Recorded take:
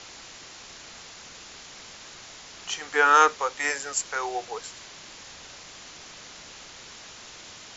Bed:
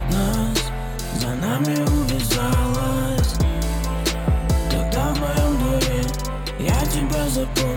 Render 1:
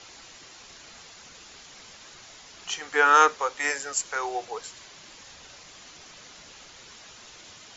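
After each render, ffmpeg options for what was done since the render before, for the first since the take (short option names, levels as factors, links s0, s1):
-af "afftdn=nr=6:nf=-46"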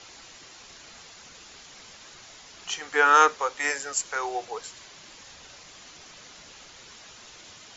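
-af anull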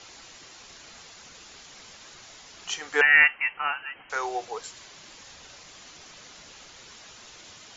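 -filter_complex "[0:a]asettb=1/sr,asplit=3[s0][s1][s2];[s0]atrim=end=3.014[s3];[s1]atrim=start=3.01:end=4.1,asetpts=PTS-STARTPTS,afade=t=in:d=0.004:c=qsin,afade=t=out:st=1.086:d=0.004:c=qsin,lowpass=f=2700:t=q:w=0.5098,lowpass=f=2700:t=q:w=0.6013,lowpass=f=2700:t=q:w=0.9,lowpass=f=2700:t=q:w=2.563,afreqshift=-3200[s4];[s2]atrim=start=4.096[s5];[s3][s4]acrossfade=d=0.004:c1=hsin:c2=qsin[s6];[s6][s5]acrossfade=d=0.004:c1=qsin:c2=hsin"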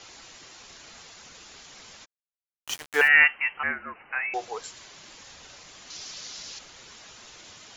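-filter_complex "[0:a]asplit=3[s0][s1][s2];[s0]afade=t=out:st=2.04:d=0.02[s3];[s1]aeval=exprs='val(0)*gte(abs(val(0)),0.0266)':c=same,afade=t=in:st=2.04:d=0.02,afade=t=out:st=3.07:d=0.02[s4];[s2]afade=t=in:st=3.07:d=0.02[s5];[s3][s4][s5]amix=inputs=3:normalize=0,asettb=1/sr,asplit=3[s6][s7][s8];[s6]atrim=end=3.634[s9];[s7]atrim=start=3.63:end=4.34,asetpts=PTS-STARTPTS,afade=t=in:d=0.004:c=qsin,afade=t=out:st=0.706:d=0.004:c=qsin,lowpass=f=2600:t=q:w=0.5098,lowpass=f=2600:t=q:w=0.6013,lowpass=f=2600:t=q:w=0.9,lowpass=f=2600:t=q:w=2.563,afreqshift=-3000[s10];[s8]atrim=start=4.336[s11];[s9][s10]acrossfade=d=0.004:c1=hsin:c2=qsin[s12];[s12][s11]acrossfade=d=0.004:c1=qsin:c2=hsin,asettb=1/sr,asplit=3[s13][s14][s15];[s13]atrim=end=5.904[s16];[s14]atrim=start=5.9:end=6.59,asetpts=PTS-STARTPTS,afade=t=in:d=0.004:c=qsin,afade=t=out:st=0.686:d=0.004:c=qsin,equalizer=f=5000:w=0.97:g=11.5[s17];[s15]atrim=start=6.586[s18];[s16][s17]acrossfade=d=0.004:c1=hsin:c2=qsin[s19];[s19][s18]acrossfade=d=0.004:c1=qsin:c2=hsin"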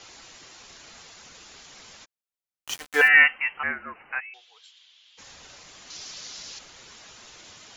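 -filter_complex "[0:a]asettb=1/sr,asplit=3[s0][s1][s2];[s0]atrim=end=2.804[s3];[s1]atrim=start=2.8:end=3.38,asetpts=PTS-STARTPTS,afade=t=in:d=0.004:c=qsin,afade=t=out:st=0.576:d=0.004:c=qsin,aecho=1:1:3.9:0.66,atrim=end_sample=25578[s4];[s2]atrim=start=3.376[s5];[s3][s4]acrossfade=d=0.004:c1=hsin:c2=qsin[s6];[s6][s5]acrossfade=d=0.004:c1=qsin:c2=hsin,asplit=3[s7][s8][s9];[s7]afade=t=out:st=4.19:d=0.02[s10];[s8]bandpass=f=3300:t=q:w=4.9,afade=t=in:st=4.19:d=0.02,afade=t=out:st=5.17:d=0.02[s11];[s9]afade=t=in:st=5.17:d=0.02[s12];[s10][s11][s12]amix=inputs=3:normalize=0"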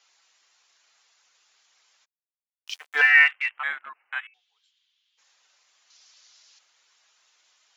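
-af "afwtdn=0.0178,highpass=870"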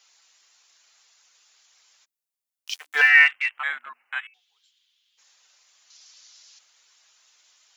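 -af "highshelf=f=4300:g=8.5,bandreject=f=60:t=h:w=6,bandreject=f=120:t=h:w=6,bandreject=f=180:t=h:w=6,bandreject=f=240:t=h:w=6,bandreject=f=300:t=h:w=6"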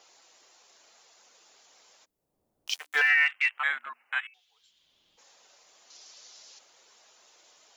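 -filter_complex "[0:a]acrossover=split=700[s0][s1];[s0]acompressor=mode=upward:threshold=0.00224:ratio=2.5[s2];[s2][s1]amix=inputs=2:normalize=0,alimiter=limit=0.211:level=0:latency=1:release=154"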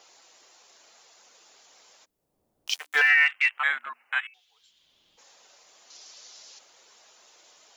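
-af "volume=1.41"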